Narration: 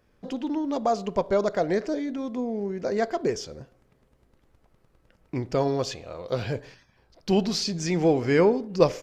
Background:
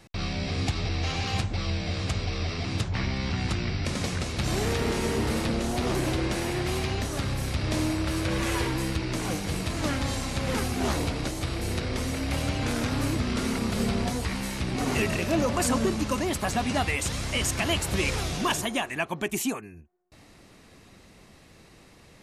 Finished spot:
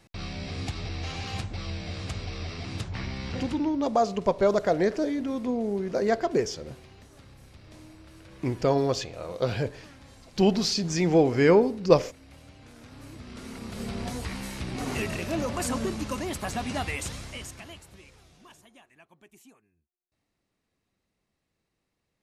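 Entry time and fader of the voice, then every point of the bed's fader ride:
3.10 s, +1.0 dB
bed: 0:03.39 −5.5 dB
0:03.79 −22.5 dB
0:12.71 −22.5 dB
0:14.15 −4.5 dB
0:17.03 −4.5 dB
0:18.09 −27 dB

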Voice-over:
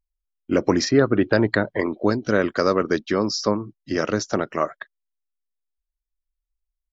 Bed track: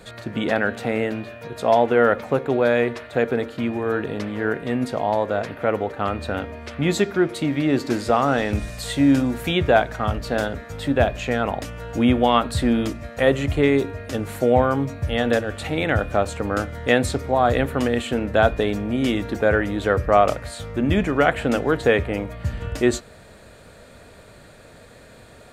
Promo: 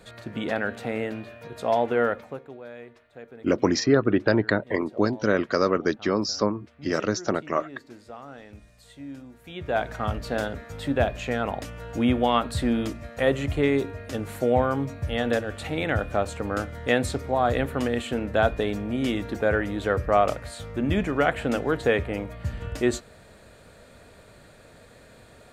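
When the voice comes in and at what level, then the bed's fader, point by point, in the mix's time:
2.95 s, −2.5 dB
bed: 0:02.04 −6 dB
0:02.59 −23 dB
0:09.41 −23 dB
0:09.87 −4.5 dB

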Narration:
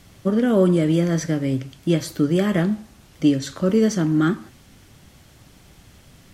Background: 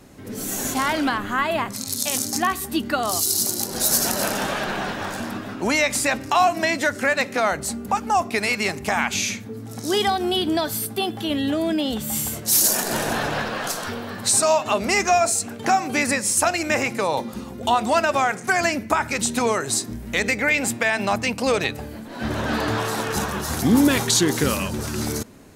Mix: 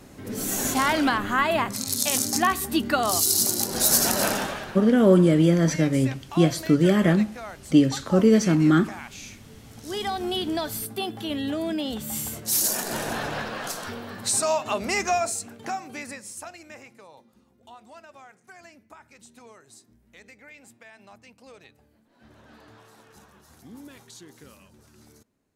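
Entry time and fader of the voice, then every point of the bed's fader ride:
4.50 s, +0.5 dB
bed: 0:04.32 0 dB
0:04.87 −17.5 dB
0:09.54 −17.5 dB
0:10.22 −5.5 dB
0:15.11 −5.5 dB
0:17.20 −28 dB

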